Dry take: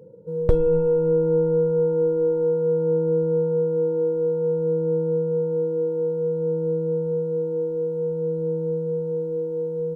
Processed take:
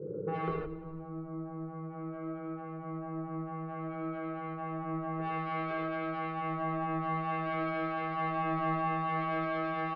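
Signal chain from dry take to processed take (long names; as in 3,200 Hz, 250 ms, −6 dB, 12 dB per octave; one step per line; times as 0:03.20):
0:05.19–0:05.71: low-shelf EQ 360 Hz −3.5 dB
compressor whose output falls as the input rises −26 dBFS, ratio −0.5
transistor ladder low-pass 500 Hz, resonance 45%
soft clipping −32.5 dBFS, distortion −11 dB
notch comb filter 240 Hz
repeating echo 177 ms, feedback 45%, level −18 dB
convolution reverb, pre-delay 3 ms, DRR −4.5 dB
level +9 dB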